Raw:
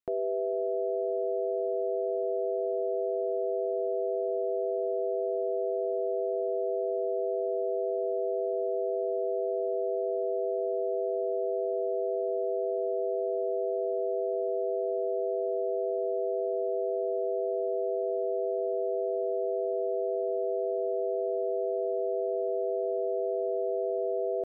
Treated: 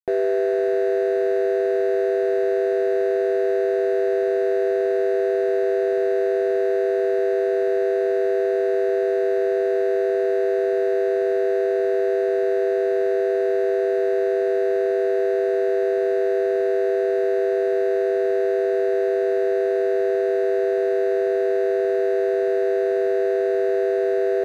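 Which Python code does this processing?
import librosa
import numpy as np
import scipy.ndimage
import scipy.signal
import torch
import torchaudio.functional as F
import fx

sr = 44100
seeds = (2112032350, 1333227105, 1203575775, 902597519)

y = scipy.ndimage.median_filter(x, 41, mode='constant')
y = fx.small_body(y, sr, hz=(420.0, 740.0), ring_ms=40, db=8)
y = y * librosa.db_to_amplitude(7.5)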